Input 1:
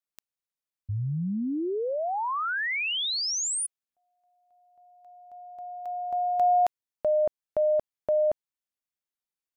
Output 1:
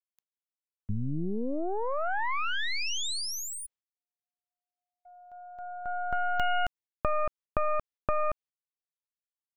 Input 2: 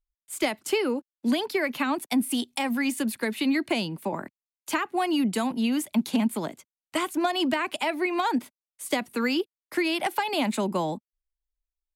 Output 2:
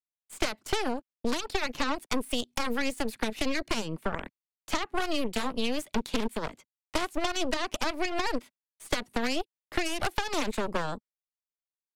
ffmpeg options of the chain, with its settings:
ffmpeg -i in.wav -filter_complex "[0:a]agate=range=-36dB:threshold=-52dB:ratio=16:release=106:detection=rms,equalizer=frequency=14000:width_type=o:width=1.4:gain=-13,aeval=exprs='0.178*(cos(1*acos(clip(val(0)/0.178,-1,1)))-cos(1*PI/2))+0.0251*(cos(3*acos(clip(val(0)/0.178,-1,1)))-cos(3*PI/2))+0.0708*(cos(4*acos(clip(val(0)/0.178,-1,1)))-cos(4*PI/2))':channel_layout=same,acrossover=split=1500|4200[link_01][link_02][link_03];[link_01]acompressor=threshold=-30dB:ratio=4[link_04];[link_02]acompressor=threshold=-41dB:ratio=4[link_05];[link_03]acompressor=threshold=-38dB:ratio=4[link_06];[link_04][link_05][link_06]amix=inputs=3:normalize=0,volume=3.5dB" out.wav

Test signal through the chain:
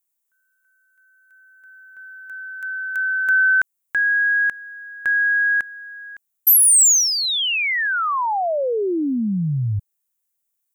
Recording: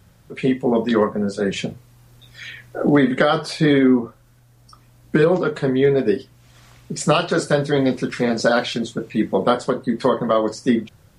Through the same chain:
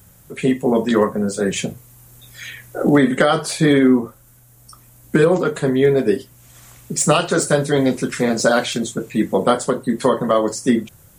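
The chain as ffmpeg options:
ffmpeg -i in.wav -af "aexciter=amount=1.8:drive=9.9:freq=6600,volume=1.5dB" out.wav

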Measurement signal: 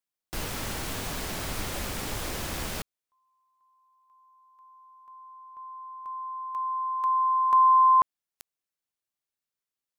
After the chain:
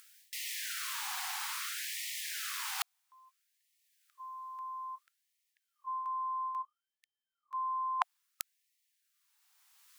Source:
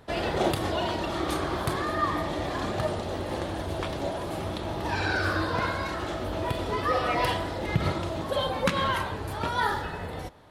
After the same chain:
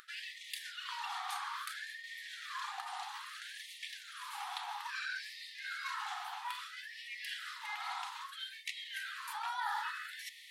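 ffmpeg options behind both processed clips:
ffmpeg -i in.wav -af "acompressor=mode=upward:threshold=-52dB:ratio=2.5:attack=1.5:release=963:knee=2.83:detection=peak,lowshelf=frequency=310:width_type=q:width=1.5:gain=-9.5,areverse,acompressor=threshold=-46dB:ratio=16:attack=21:release=242:knee=6:detection=peak,areverse,afftfilt=real='re*gte(b*sr/1024,690*pow(1800/690,0.5+0.5*sin(2*PI*0.6*pts/sr)))':imag='im*gte(b*sr/1024,690*pow(1800/690,0.5+0.5*sin(2*PI*0.6*pts/sr)))':win_size=1024:overlap=0.75,volume=11.5dB" out.wav

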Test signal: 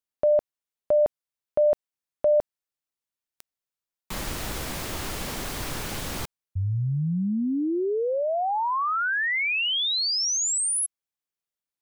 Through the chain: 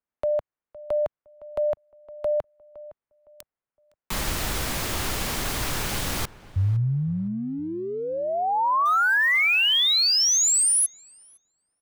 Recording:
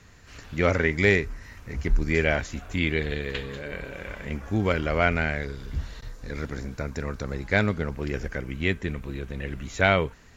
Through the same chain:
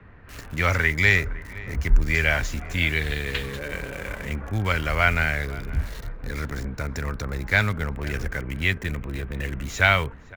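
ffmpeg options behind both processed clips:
ffmpeg -i in.wav -filter_complex "[0:a]acrossover=split=130|820|2300[link_01][link_02][link_03][link_04];[link_02]acompressor=threshold=-37dB:ratio=5:attack=0.24:release=51:detection=peak[link_05];[link_04]acrusher=bits=7:mix=0:aa=0.000001[link_06];[link_01][link_05][link_03][link_06]amix=inputs=4:normalize=0,asplit=2[link_07][link_08];[link_08]adelay=512,lowpass=frequency=1700:poles=1,volume=-17.5dB,asplit=2[link_09][link_10];[link_10]adelay=512,lowpass=frequency=1700:poles=1,volume=0.28,asplit=2[link_11][link_12];[link_12]adelay=512,lowpass=frequency=1700:poles=1,volume=0.28[link_13];[link_07][link_09][link_11][link_13]amix=inputs=4:normalize=0,volume=5dB" out.wav

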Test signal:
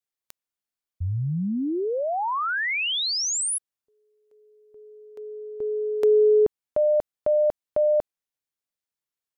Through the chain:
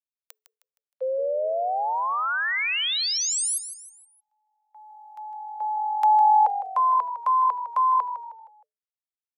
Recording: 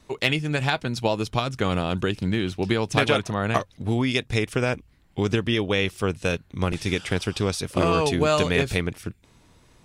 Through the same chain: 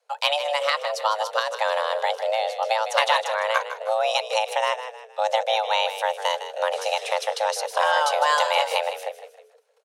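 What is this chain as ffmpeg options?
ffmpeg -i in.wav -filter_complex "[0:a]agate=range=-17dB:threshold=-52dB:ratio=16:release=120:detection=rms,asplit=5[link_01][link_02][link_03][link_04][link_05];[link_02]adelay=156,afreqshift=-46,volume=-11dB[link_06];[link_03]adelay=312,afreqshift=-92,volume=-19dB[link_07];[link_04]adelay=468,afreqshift=-138,volume=-26.9dB[link_08];[link_05]adelay=624,afreqshift=-184,volume=-34.9dB[link_09];[link_01][link_06][link_07][link_08][link_09]amix=inputs=5:normalize=0,afreqshift=430" out.wav

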